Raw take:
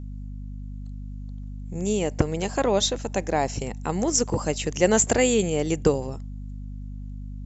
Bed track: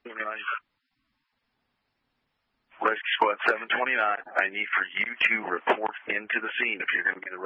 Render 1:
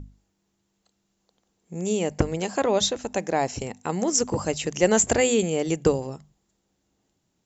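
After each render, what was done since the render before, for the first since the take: hum notches 50/100/150/200/250 Hz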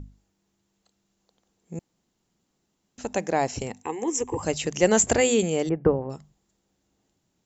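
1.79–2.98 s: room tone; 3.83–4.43 s: static phaser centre 930 Hz, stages 8; 5.69–6.10 s: low-pass 1.7 kHz 24 dB/octave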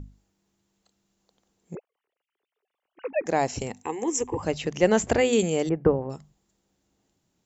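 1.75–3.26 s: formants replaced by sine waves; 4.27–5.33 s: distance through air 130 m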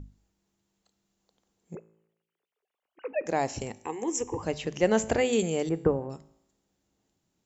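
feedback comb 55 Hz, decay 0.83 s, harmonics all, mix 40%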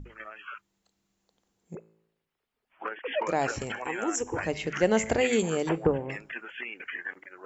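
add bed track -11 dB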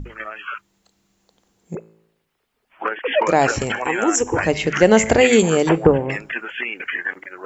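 trim +11.5 dB; peak limiter -1 dBFS, peak gain reduction 2 dB

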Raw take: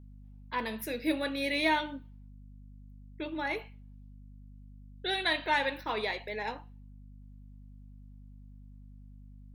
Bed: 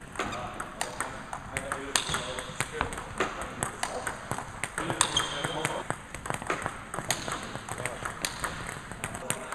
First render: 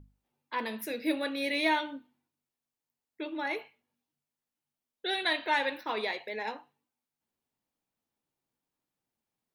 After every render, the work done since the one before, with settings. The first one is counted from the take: hum notches 50/100/150/200/250 Hz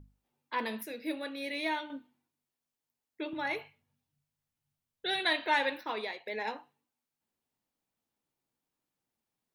0.83–1.90 s: gain -6 dB; 3.33–5.20 s: resonant low shelf 190 Hz +12.5 dB, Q 1.5; 5.70–6.26 s: fade out, to -9.5 dB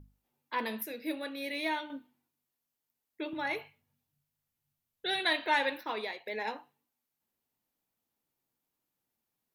peaking EQ 13 kHz +10 dB 0.28 oct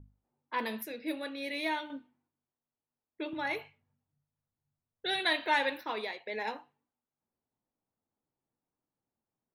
level-controlled noise filter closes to 1.1 kHz, open at -32.5 dBFS; peaking EQ 100 Hz +3 dB 0.41 oct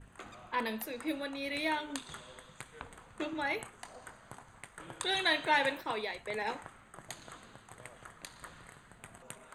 add bed -16.5 dB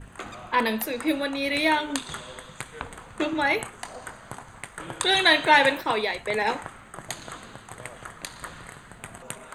trim +11 dB

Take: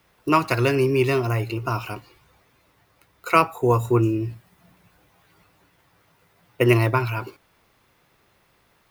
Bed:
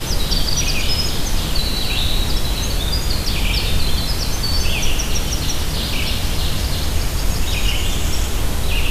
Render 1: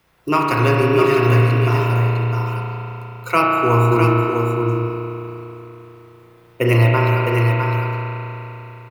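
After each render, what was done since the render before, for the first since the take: delay 656 ms -5 dB; spring tank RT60 3.5 s, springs 34 ms, chirp 40 ms, DRR -2.5 dB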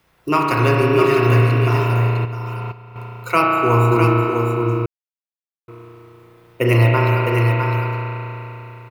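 2.25–2.96 s: level held to a coarse grid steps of 13 dB; 4.86–5.68 s: mute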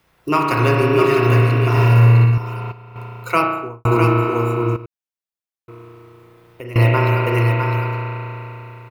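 1.71–2.38 s: flutter echo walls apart 10.2 m, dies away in 0.86 s; 3.32–3.85 s: studio fade out; 4.76–6.76 s: compression 4:1, threshold -32 dBFS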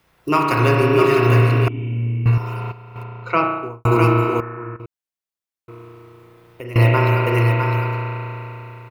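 1.68–2.26 s: cascade formant filter i; 3.03–3.63 s: distance through air 210 m; 4.40–4.80 s: four-pole ladder low-pass 1.8 kHz, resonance 85%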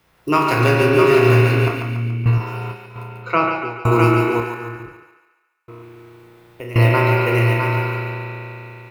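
spectral sustain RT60 0.31 s; on a send: thinning echo 142 ms, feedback 53%, high-pass 540 Hz, level -5 dB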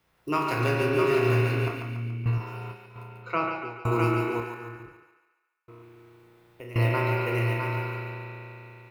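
trim -10 dB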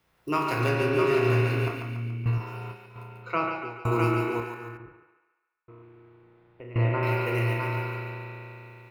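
0.69–1.51 s: treble shelf 11 kHz -6 dB; 4.77–7.03 s: distance through air 410 m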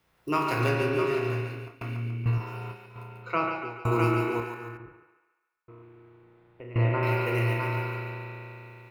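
0.66–1.81 s: fade out, to -23 dB

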